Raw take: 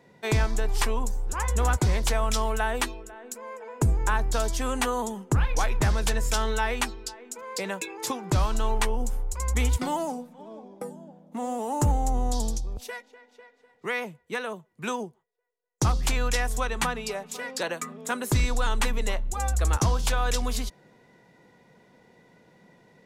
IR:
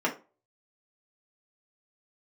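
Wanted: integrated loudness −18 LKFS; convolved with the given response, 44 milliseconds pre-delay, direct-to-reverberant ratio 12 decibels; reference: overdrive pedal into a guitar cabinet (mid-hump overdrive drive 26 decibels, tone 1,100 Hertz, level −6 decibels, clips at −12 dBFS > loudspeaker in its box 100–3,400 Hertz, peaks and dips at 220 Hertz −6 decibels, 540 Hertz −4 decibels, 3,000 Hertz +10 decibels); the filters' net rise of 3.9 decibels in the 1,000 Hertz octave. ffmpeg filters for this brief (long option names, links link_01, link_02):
-filter_complex "[0:a]equalizer=frequency=1000:width_type=o:gain=5,asplit=2[link_01][link_02];[1:a]atrim=start_sample=2205,adelay=44[link_03];[link_02][link_03]afir=irnorm=-1:irlink=0,volume=-23dB[link_04];[link_01][link_04]amix=inputs=2:normalize=0,asplit=2[link_05][link_06];[link_06]highpass=frequency=720:poles=1,volume=26dB,asoftclip=type=tanh:threshold=-12dB[link_07];[link_05][link_07]amix=inputs=2:normalize=0,lowpass=frequency=1100:poles=1,volume=-6dB,highpass=100,equalizer=frequency=220:width_type=q:width=4:gain=-6,equalizer=frequency=540:width_type=q:width=4:gain=-4,equalizer=frequency=3000:width_type=q:width=4:gain=10,lowpass=frequency=3400:width=0.5412,lowpass=frequency=3400:width=1.3066,volume=6dB"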